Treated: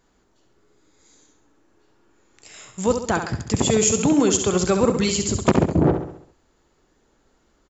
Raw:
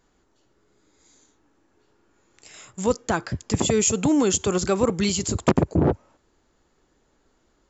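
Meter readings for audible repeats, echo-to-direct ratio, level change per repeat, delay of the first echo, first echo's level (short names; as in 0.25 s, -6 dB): 5, -6.5 dB, -6.0 dB, 67 ms, -7.5 dB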